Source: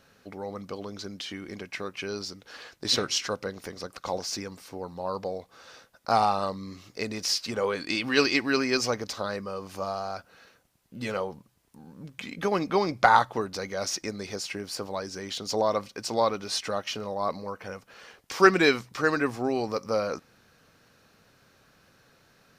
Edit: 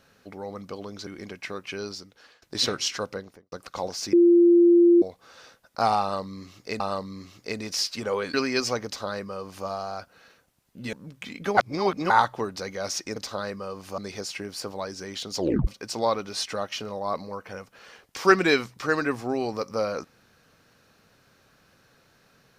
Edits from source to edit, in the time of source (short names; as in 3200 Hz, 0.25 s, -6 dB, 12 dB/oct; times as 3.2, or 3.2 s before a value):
1.07–1.37 cut
2.13–2.72 fade out, to -20 dB
3.39–3.82 studio fade out
4.43–5.32 bleep 345 Hz -12.5 dBFS
6.31–7.1 loop, 2 plays
7.85–8.51 cut
9.02–9.84 copy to 14.13
11.1–11.9 cut
12.54–13.07 reverse
15.53 tape stop 0.29 s